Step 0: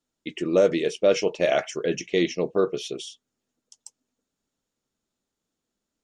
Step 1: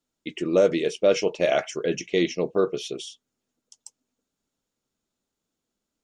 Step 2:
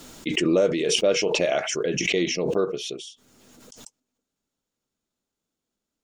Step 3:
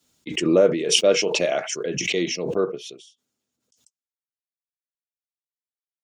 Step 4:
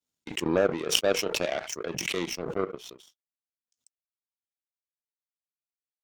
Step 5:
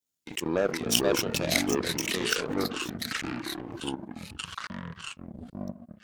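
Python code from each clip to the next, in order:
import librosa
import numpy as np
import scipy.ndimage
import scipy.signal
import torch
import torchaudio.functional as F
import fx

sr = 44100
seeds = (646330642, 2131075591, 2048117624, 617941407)

y1 = fx.notch(x, sr, hz=1800.0, q=22.0)
y2 = fx.pre_swell(y1, sr, db_per_s=26.0)
y2 = y2 * 10.0 ** (-2.0 / 20.0)
y3 = scipy.signal.sosfilt(scipy.signal.butter(2, 92.0, 'highpass', fs=sr, output='sos'), y2)
y3 = fx.band_widen(y3, sr, depth_pct=100)
y4 = fx.power_curve(y3, sr, exponent=2.0)
y4 = fx.env_flatten(y4, sr, amount_pct=50)
y5 = fx.high_shelf(y4, sr, hz=7300.0, db=10.0)
y5 = fx.echo_pitch(y5, sr, ms=211, semitones=-6, count=2, db_per_echo=-3.0)
y5 = y5 * 10.0 ** (-3.0 / 20.0)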